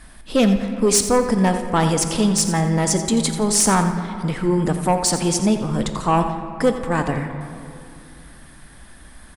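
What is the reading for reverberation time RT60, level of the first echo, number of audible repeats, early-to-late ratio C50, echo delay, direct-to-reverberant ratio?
2.6 s, −11.5 dB, 2, 7.0 dB, 87 ms, 6.0 dB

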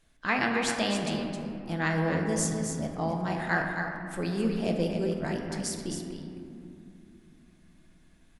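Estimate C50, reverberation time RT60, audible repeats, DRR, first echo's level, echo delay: 2.0 dB, 2.7 s, 1, 0.5 dB, −6.5 dB, 265 ms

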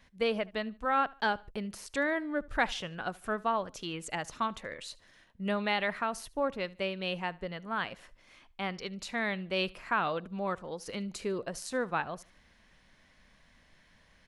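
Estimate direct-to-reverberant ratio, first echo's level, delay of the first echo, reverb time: no reverb audible, −23.0 dB, 74 ms, no reverb audible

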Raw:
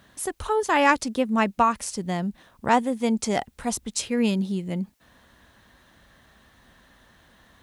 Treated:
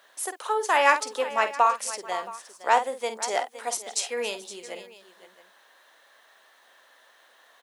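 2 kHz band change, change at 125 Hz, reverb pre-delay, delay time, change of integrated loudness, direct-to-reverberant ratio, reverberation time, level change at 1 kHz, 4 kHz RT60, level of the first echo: +0.5 dB, below −30 dB, no reverb audible, 50 ms, −1.0 dB, no reverb audible, no reverb audible, +0.5 dB, no reverb audible, −10.0 dB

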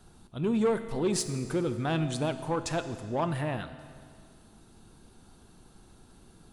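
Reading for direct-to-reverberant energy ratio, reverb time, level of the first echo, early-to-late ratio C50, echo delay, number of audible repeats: 9.5 dB, 2.0 s, no echo audible, 11.0 dB, no echo audible, no echo audible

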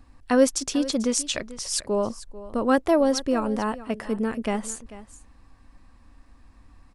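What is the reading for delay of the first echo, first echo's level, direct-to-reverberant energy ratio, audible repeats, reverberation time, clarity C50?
442 ms, −16.5 dB, no reverb audible, 1, no reverb audible, no reverb audible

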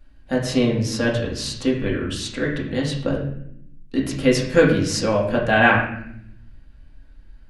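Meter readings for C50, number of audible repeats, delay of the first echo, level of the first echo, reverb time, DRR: 5.0 dB, no echo audible, no echo audible, no echo audible, 0.70 s, −4.0 dB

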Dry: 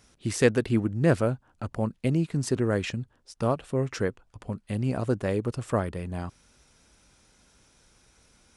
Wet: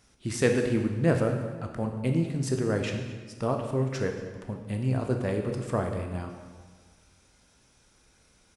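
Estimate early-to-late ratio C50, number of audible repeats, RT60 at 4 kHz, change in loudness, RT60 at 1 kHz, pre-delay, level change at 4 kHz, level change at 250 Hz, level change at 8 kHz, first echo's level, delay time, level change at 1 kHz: 5.5 dB, 1, 1.2 s, −1.0 dB, 1.5 s, 14 ms, −1.5 dB, −1.0 dB, −1.5 dB, −19.0 dB, 228 ms, −1.0 dB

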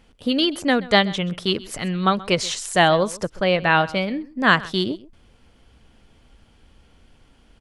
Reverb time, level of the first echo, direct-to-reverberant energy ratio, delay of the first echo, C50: no reverb audible, −20.0 dB, no reverb audible, 130 ms, no reverb audible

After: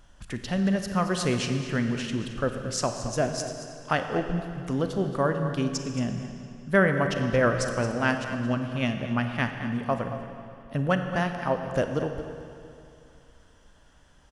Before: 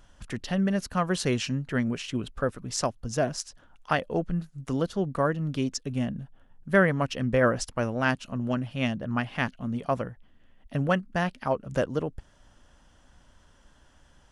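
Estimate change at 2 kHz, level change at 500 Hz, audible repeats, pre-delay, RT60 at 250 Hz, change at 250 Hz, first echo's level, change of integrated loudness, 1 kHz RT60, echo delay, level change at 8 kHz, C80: +1.5 dB, +1.0 dB, 1, 34 ms, 2.6 s, +1.0 dB, −12.5 dB, +1.0 dB, 2.6 s, 224 ms, +1.0 dB, 6.5 dB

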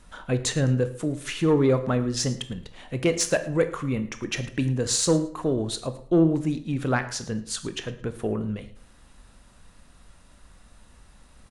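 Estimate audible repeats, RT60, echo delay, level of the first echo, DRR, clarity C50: 2, 0.55 s, 110 ms, −19.5 dB, 9.5 dB, 12.5 dB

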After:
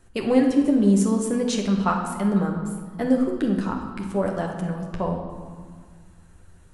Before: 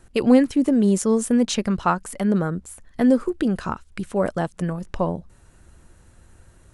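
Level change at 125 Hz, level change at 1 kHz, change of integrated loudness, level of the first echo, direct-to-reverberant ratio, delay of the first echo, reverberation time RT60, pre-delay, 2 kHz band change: 0.0 dB, −1.5 dB, −1.5 dB, no echo audible, 0.5 dB, no echo audible, 1.8 s, 10 ms, −2.5 dB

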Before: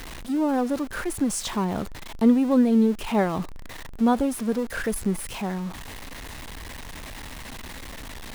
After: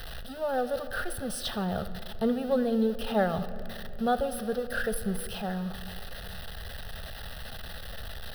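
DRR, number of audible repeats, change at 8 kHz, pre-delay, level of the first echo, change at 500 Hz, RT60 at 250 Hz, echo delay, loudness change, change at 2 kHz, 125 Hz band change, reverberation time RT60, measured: 11.5 dB, no echo audible, −7.5 dB, 6 ms, no echo audible, −1.5 dB, 3.3 s, no echo audible, −8.0 dB, −1.5 dB, −3.5 dB, 2.7 s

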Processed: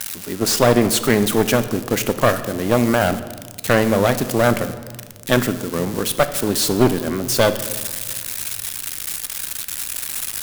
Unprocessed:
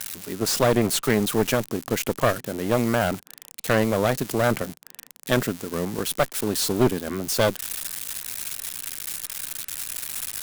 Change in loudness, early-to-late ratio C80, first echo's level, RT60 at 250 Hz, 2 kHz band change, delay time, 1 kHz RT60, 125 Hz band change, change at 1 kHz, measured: +5.5 dB, 14.5 dB, no echo audible, 2.3 s, +5.5 dB, no echo audible, 1.5 s, +5.0 dB, +5.5 dB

